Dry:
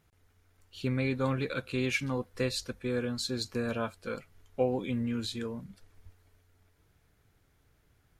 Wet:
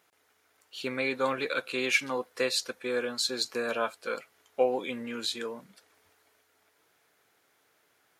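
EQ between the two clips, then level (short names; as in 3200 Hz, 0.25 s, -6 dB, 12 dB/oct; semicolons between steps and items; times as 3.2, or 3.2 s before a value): HPF 470 Hz 12 dB/oct; +6.0 dB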